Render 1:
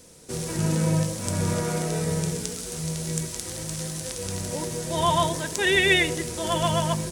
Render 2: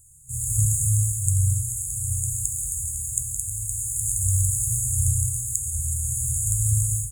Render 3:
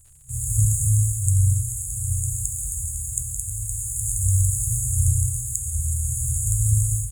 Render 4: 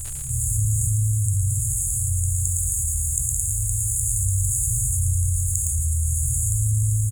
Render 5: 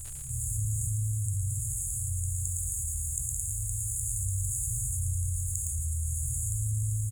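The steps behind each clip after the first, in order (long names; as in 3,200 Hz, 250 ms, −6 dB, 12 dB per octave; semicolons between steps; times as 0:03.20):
brick-wall band-stop 150–6,600 Hz; automatic gain control gain up to 14 dB
surface crackle 120 per second −45 dBFS; low-shelf EQ 92 Hz +8.5 dB; level −1 dB
on a send: repeating echo 112 ms, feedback 59%, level −6.5 dB; on the sum: envelope flattener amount 70%; level −6 dB
bit-depth reduction 10 bits, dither none; level −9 dB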